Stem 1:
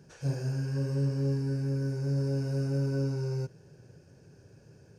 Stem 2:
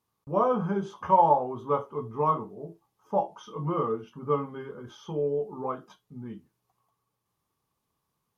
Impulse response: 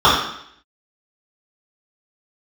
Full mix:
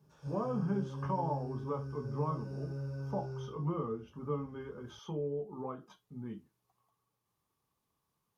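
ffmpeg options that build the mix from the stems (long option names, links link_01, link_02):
-filter_complex "[0:a]asubboost=boost=10.5:cutoff=58,volume=-19dB,asplit=2[link_01][link_02];[link_02]volume=-18.5dB[link_03];[1:a]acrossover=split=310[link_04][link_05];[link_05]acompressor=threshold=-43dB:ratio=2[link_06];[link_04][link_06]amix=inputs=2:normalize=0,volume=-3dB[link_07];[2:a]atrim=start_sample=2205[link_08];[link_03][link_08]afir=irnorm=-1:irlink=0[link_09];[link_01][link_07][link_09]amix=inputs=3:normalize=0"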